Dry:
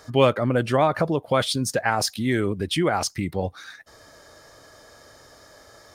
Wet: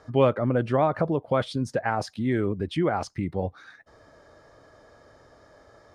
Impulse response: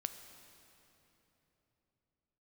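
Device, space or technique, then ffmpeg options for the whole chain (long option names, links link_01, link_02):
through cloth: -af "lowpass=9300,highshelf=frequency=2600:gain=-16,volume=-1.5dB"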